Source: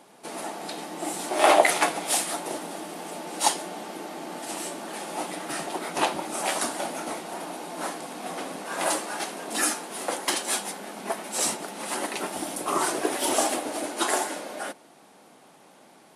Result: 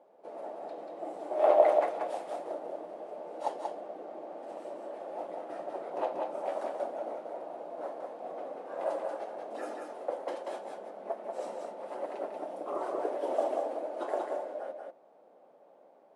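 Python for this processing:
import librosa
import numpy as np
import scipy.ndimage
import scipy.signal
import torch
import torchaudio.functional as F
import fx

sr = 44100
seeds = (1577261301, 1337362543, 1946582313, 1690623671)

y = fx.bandpass_q(x, sr, hz=560.0, q=3.5)
y = y + 10.0 ** (-4.0 / 20.0) * np.pad(y, (int(186 * sr / 1000.0), 0))[:len(y)]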